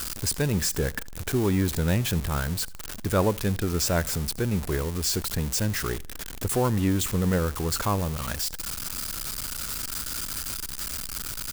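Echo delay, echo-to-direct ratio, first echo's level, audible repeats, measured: 81 ms, -23.0 dB, -23.5 dB, 2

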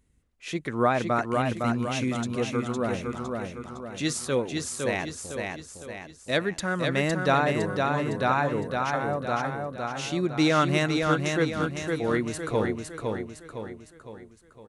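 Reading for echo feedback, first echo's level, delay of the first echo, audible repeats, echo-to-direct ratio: 48%, -4.0 dB, 509 ms, 5, -3.0 dB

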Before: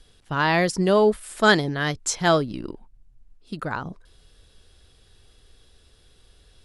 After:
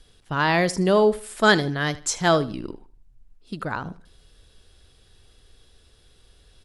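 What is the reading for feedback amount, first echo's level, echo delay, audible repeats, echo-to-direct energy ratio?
29%, -18.0 dB, 77 ms, 2, -17.5 dB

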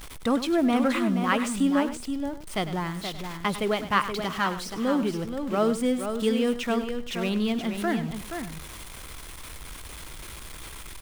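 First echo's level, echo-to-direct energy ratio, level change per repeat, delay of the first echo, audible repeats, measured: -13.0 dB, -6.0 dB, no regular repeats, 100 ms, 3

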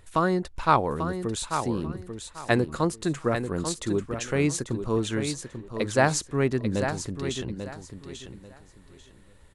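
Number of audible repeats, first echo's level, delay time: 3, -8.0 dB, 841 ms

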